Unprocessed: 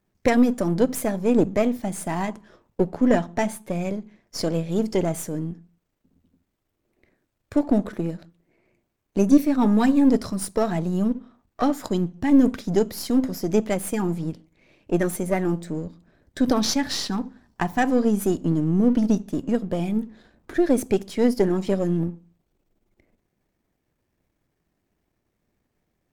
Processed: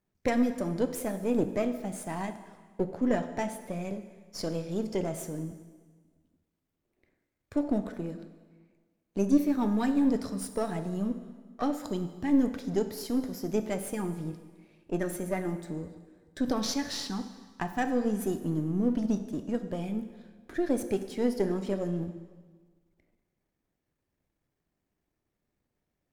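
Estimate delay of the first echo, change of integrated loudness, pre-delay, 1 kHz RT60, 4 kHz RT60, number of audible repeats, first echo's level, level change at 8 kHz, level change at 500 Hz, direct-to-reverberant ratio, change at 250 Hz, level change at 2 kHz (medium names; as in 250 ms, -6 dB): no echo, -8.0 dB, 5 ms, 1.5 s, 1.4 s, no echo, no echo, -8.0 dB, -8.0 dB, 8.5 dB, -8.0 dB, -8.0 dB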